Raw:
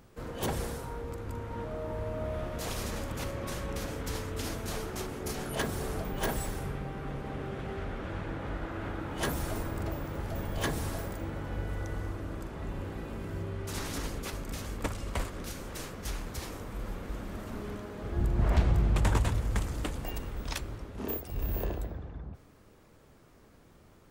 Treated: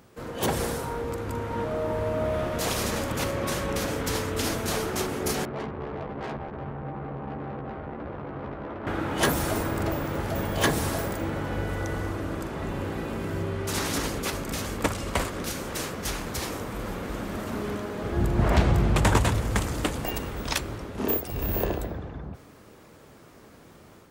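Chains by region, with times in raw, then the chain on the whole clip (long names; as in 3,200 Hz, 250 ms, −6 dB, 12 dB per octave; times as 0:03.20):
0:05.45–0:08.87: inverse Chebyshev low-pass filter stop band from 3,100 Hz, stop band 50 dB + tube saturation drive 41 dB, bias 0.65 + double-tracking delay 14 ms −4 dB
whole clip: high-pass filter 130 Hz 6 dB per octave; automatic gain control gain up to 5 dB; level +4.5 dB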